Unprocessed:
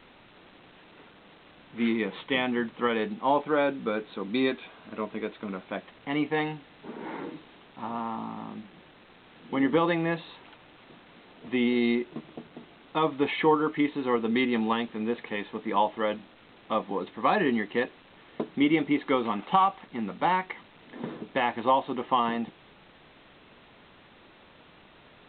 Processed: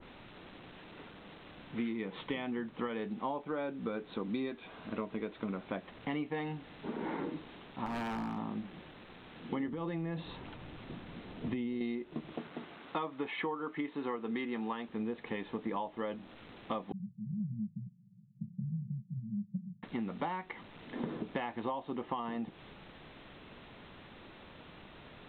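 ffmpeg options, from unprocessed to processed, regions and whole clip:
-filter_complex "[0:a]asettb=1/sr,asplit=3[s0][s1][s2];[s0]atrim=end=7.864[s3];[s1]atrim=start=7.86:end=8.38,asetpts=PTS-STARTPTS,afade=t=in:d=0.004:c=qsin,afade=t=out:st=0.516:d=0.004:c=qsin,bandreject=f=570:w=7.6,aeval=exprs='0.0335*(abs(mod(val(0)/0.0335+3,4)-2)-1)':c=same[s4];[s2]atrim=start=8.376[s5];[s3][s4]acrossfade=d=0.004:c1=hsin:c2=qsin[s6];[s6][s5]acrossfade=d=0.004:c1=qsin:c2=hsin,asettb=1/sr,asplit=3[s7][s8][s9];[s7]atrim=end=9.684[s10];[s8]atrim=start=9.68:end=11.81,asetpts=PTS-STARTPTS,afade=t=in:d=0.004:c=qsin,afade=t=out:st=2.126:d=0.004:c=qsin,lowshelf=f=230:g=10.5,acompressor=threshold=0.0447:ratio=6:attack=3.2:release=140:knee=1:detection=peak[s11];[s9]atrim=start=11.806[s12];[s10][s11]acrossfade=d=0.004:c1=hsin:c2=qsin[s13];[s13][s12]acrossfade=d=0.004:c1=qsin:c2=hsin,asettb=1/sr,asplit=3[s14][s15][s16];[s14]atrim=end=12.334[s17];[s15]atrim=start=12.33:end=14.89,asetpts=PTS-STARTPTS,afade=t=in:d=0.004:c=qsin,afade=t=out:st=2.556:d=0.004:c=qsin,highpass=f=190:p=1,equalizer=f=1400:t=o:w=1.7:g=4.5[s18];[s16]atrim=start=14.886[s19];[s17][s18]acrossfade=d=0.004:c1=hsin:c2=qsin[s20];[s20][s19]acrossfade=d=0.004:c1=qsin:c2=hsin,asettb=1/sr,asplit=3[s21][s22][s23];[s21]atrim=end=16.924[s24];[s22]atrim=start=16.92:end=19.83,asetpts=PTS-STARTPTS,afade=t=in:d=0.004:c=qsin,afade=t=out:st=2.906:d=0.004:c=qsin,aeval=exprs='clip(val(0),-1,0.0562)':c=same,asuperpass=centerf=150:order=20:qfactor=1.4,asplit=2[s25][s26];[s26]adelay=23,volume=0.2[s27];[s25][s27]amix=inputs=2:normalize=0,atrim=end_sample=128331[s28];[s23]atrim=start=19.826[s29];[s24][s28]acrossfade=d=0.004:c1=hsin:c2=qsin[s30];[s30][s29]acrossfade=d=0.004:c1=qsin:c2=hsin,lowshelf=f=240:g=6,acompressor=threshold=0.0224:ratio=12,adynamicequalizer=threshold=0.00282:dfrequency=1600:dqfactor=0.7:tfrequency=1600:tqfactor=0.7:attack=5:release=100:ratio=0.375:range=1.5:mode=cutabove:tftype=highshelf"

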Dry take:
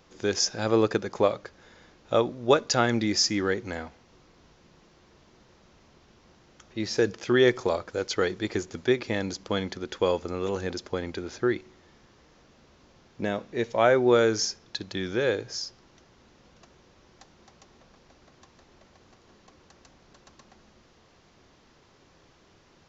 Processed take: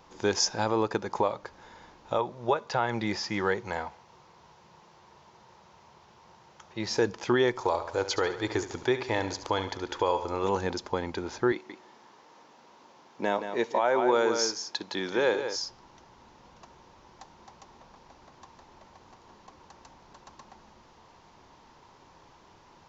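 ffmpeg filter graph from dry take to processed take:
-filter_complex "[0:a]asettb=1/sr,asplit=3[s0][s1][s2];[s0]atrim=end=2.184[s3];[s1]atrim=start=2.18:end=6.87,asetpts=PTS-STARTPTS,afade=t=in:d=0.004:c=qsin,afade=t=out:st=4.686:d=0.004:c=qsin,acrossover=split=3700[s4][s5];[s5]acompressor=threshold=0.00447:ratio=4:attack=1:release=60[s6];[s4][s6]amix=inputs=2:normalize=0,highpass=90,equalizer=f=270:w=4.4:g=-14.5[s7];[s2]atrim=start=6.866[s8];[s3][s7]acrossfade=d=0.004:c1=hsin:c2=qsin[s9];[s9][s8]acrossfade=d=0.004:c1=qsin:c2=hsin,asettb=1/sr,asplit=3[s10][s11][s12];[s10]atrim=end=7.584[s13];[s11]atrim=start=7.58:end=10.44,asetpts=PTS-STARTPTS,afade=t=in:d=0.004:c=qsin,afade=t=out:st=2.856:d=0.004:c=qsin,equalizer=f=200:w=4:g=-13.5,acompressor=mode=upward:threshold=0.0158:ratio=2.5:attack=3.2:release=140:knee=2.83:detection=peak,aecho=1:1:72|144|216|288|360:0.251|0.113|0.0509|0.0229|0.0103,atrim=end_sample=126126[s14];[s12]atrim=start=10.436[s15];[s13][s14]acrossfade=d=0.004:c1=hsin:c2=qsin[s16];[s16][s15]acrossfade=d=0.004:c1=qsin:c2=hsin,asettb=1/sr,asplit=3[s17][s18][s19];[s17]atrim=end=11.524[s20];[s18]atrim=start=11.52:end=15.56,asetpts=PTS-STARTPTS,afade=t=in:d=0.004:c=qsin,afade=t=out:st=4.036:d=0.004:c=qsin,highpass=250,aecho=1:1:174:0.355,atrim=end_sample=178164[s21];[s19]atrim=start=15.556[s22];[s20][s21]acrossfade=d=0.004:c1=hsin:c2=qsin[s23];[s23][s22]acrossfade=d=0.004:c1=qsin:c2=hsin,equalizer=f=920:w=3:g=13,alimiter=limit=0.2:level=0:latency=1:release=278"

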